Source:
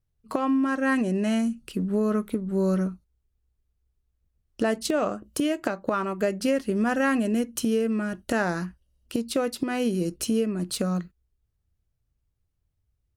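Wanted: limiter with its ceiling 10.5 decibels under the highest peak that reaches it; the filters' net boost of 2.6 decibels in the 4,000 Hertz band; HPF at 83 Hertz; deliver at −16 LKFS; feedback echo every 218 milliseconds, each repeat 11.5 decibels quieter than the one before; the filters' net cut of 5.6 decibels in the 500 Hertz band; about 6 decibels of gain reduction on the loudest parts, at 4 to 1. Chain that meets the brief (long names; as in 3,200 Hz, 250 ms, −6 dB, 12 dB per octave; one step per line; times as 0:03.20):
high-pass filter 83 Hz
parametric band 500 Hz −7 dB
parametric band 4,000 Hz +3.5 dB
downward compressor 4 to 1, threshold −29 dBFS
brickwall limiter −24.5 dBFS
repeating echo 218 ms, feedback 27%, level −11.5 dB
level +18 dB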